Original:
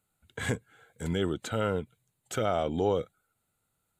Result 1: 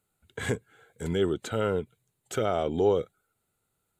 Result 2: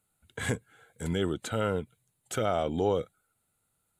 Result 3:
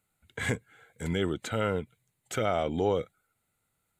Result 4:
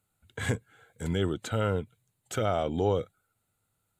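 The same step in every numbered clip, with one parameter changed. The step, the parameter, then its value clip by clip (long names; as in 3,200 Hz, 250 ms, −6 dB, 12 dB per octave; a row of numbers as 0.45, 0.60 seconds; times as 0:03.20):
parametric band, centre frequency: 400, 10,000, 2,100, 100 Hertz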